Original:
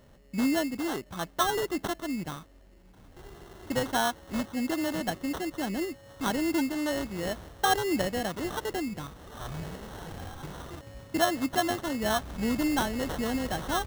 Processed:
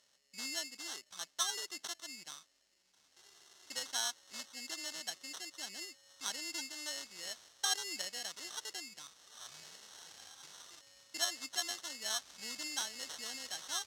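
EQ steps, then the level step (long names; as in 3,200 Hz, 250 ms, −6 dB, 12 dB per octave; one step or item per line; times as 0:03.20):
resonant band-pass 5,700 Hz, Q 1.6
+3.0 dB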